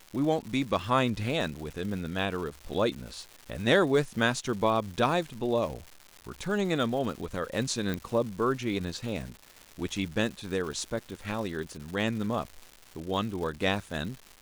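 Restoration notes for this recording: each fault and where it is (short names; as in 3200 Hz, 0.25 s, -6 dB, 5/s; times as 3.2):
crackle 320/s -37 dBFS
7.94 pop -18 dBFS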